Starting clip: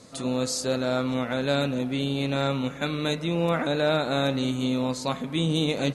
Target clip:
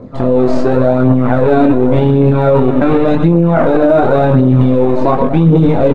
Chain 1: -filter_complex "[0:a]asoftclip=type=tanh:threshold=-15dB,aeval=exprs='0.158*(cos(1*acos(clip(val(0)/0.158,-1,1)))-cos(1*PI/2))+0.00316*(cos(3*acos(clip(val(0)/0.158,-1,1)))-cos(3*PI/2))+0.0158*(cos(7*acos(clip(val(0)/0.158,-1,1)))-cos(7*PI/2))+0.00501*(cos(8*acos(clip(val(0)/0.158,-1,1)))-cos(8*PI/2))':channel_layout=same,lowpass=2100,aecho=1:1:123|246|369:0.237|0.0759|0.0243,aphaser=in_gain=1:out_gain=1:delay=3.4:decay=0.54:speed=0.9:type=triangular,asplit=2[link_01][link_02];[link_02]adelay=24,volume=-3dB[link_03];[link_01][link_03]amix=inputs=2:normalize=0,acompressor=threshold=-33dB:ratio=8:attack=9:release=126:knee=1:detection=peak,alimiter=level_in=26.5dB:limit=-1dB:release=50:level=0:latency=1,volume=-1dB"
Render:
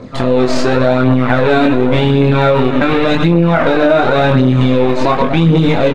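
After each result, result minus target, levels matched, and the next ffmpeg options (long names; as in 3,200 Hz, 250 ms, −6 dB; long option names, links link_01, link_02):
downward compressor: peak gain reduction +9 dB; 2,000 Hz band +8.5 dB
-filter_complex "[0:a]asoftclip=type=tanh:threshold=-15dB,aeval=exprs='0.158*(cos(1*acos(clip(val(0)/0.158,-1,1)))-cos(1*PI/2))+0.00316*(cos(3*acos(clip(val(0)/0.158,-1,1)))-cos(3*PI/2))+0.0158*(cos(7*acos(clip(val(0)/0.158,-1,1)))-cos(7*PI/2))+0.00501*(cos(8*acos(clip(val(0)/0.158,-1,1)))-cos(8*PI/2))':channel_layout=same,lowpass=2100,aecho=1:1:123|246|369:0.237|0.0759|0.0243,aphaser=in_gain=1:out_gain=1:delay=3.4:decay=0.54:speed=0.9:type=triangular,asplit=2[link_01][link_02];[link_02]adelay=24,volume=-3dB[link_03];[link_01][link_03]amix=inputs=2:normalize=0,acompressor=threshold=-23dB:ratio=8:attack=9:release=126:knee=1:detection=peak,alimiter=level_in=26.5dB:limit=-1dB:release=50:level=0:latency=1,volume=-1dB"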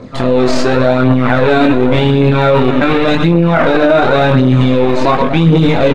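2,000 Hz band +8.5 dB
-filter_complex "[0:a]asoftclip=type=tanh:threshold=-15dB,aeval=exprs='0.158*(cos(1*acos(clip(val(0)/0.158,-1,1)))-cos(1*PI/2))+0.00316*(cos(3*acos(clip(val(0)/0.158,-1,1)))-cos(3*PI/2))+0.0158*(cos(7*acos(clip(val(0)/0.158,-1,1)))-cos(7*PI/2))+0.00501*(cos(8*acos(clip(val(0)/0.158,-1,1)))-cos(8*PI/2))':channel_layout=same,lowpass=880,aecho=1:1:123|246|369:0.237|0.0759|0.0243,aphaser=in_gain=1:out_gain=1:delay=3.4:decay=0.54:speed=0.9:type=triangular,asplit=2[link_01][link_02];[link_02]adelay=24,volume=-3dB[link_03];[link_01][link_03]amix=inputs=2:normalize=0,acompressor=threshold=-23dB:ratio=8:attack=9:release=126:knee=1:detection=peak,alimiter=level_in=26.5dB:limit=-1dB:release=50:level=0:latency=1,volume=-1dB"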